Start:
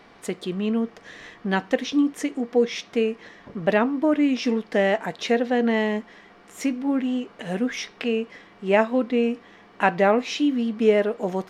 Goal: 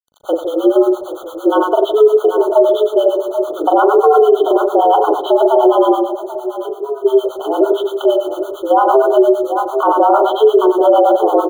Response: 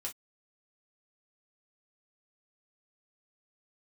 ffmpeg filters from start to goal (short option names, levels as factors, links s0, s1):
-filter_complex "[0:a]asplit=2[s0][s1];[s1]aecho=0:1:786|1572:0.251|0.0402[s2];[s0][s2]amix=inputs=2:normalize=0,highpass=f=190:t=q:w=0.5412,highpass=f=190:t=q:w=1.307,lowpass=f=2600:t=q:w=0.5176,lowpass=f=2600:t=q:w=0.7071,lowpass=f=2600:t=q:w=1.932,afreqshift=140,agate=range=0.0224:threshold=0.00708:ratio=3:detection=peak,acrusher=bits=8:mix=0:aa=0.000001,asplit=3[s3][s4][s5];[s3]afade=t=out:st=5.98:d=0.02[s6];[s4]acompressor=threshold=0.02:ratio=6,afade=t=in:st=5.98:d=0.02,afade=t=out:st=7.04:d=0.02[s7];[s5]afade=t=in:st=7.04:d=0.02[s8];[s6][s7][s8]amix=inputs=3:normalize=0,asplit=2[s9][s10];[s10]aecho=0:1:40|92|159.6|247.5|361.7:0.631|0.398|0.251|0.158|0.1[s11];[s9][s11]amix=inputs=2:normalize=0,acrossover=split=720[s12][s13];[s12]aeval=exprs='val(0)*(1-1/2+1/2*cos(2*PI*8.8*n/s))':c=same[s14];[s13]aeval=exprs='val(0)*(1-1/2-1/2*cos(2*PI*8.8*n/s))':c=same[s15];[s14][s15]amix=inputs=2:normalize=0,alimiter=level_in=8.41:limit=0.891:release=50:level=0:latency=1,afftfilt=real='re*eq(mod(floor(b*sr/1024/1500),2),0)':imag='im*eq(mod(floor(b*sr/1024/1500),2),0)':win_size=1024:overlap=0.75,volume=0.891"